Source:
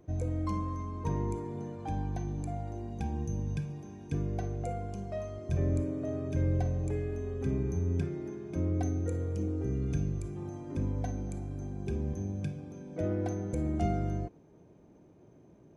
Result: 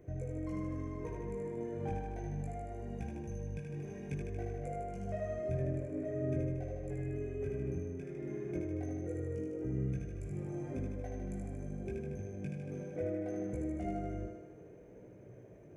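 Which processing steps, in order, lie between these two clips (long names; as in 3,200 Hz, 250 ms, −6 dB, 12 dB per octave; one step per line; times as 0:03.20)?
octave-band graphic EQ 125/250/500/1,000/2,000/4,000 Hz +4/−4/+8/−9/+9/−10 dB
downward compressor, threshold −38 dBFS, peak gain reduction 14.5 dB
multi-voice chorus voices 4, 0.65 Hz, delay 19 ms, depth 3.7 ms
on a send: feedback echo with a high-pass in the loop 77 ms, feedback 69%, high-pass 190 Hz, level −3.5 dB
on the sum: level +3.5 dB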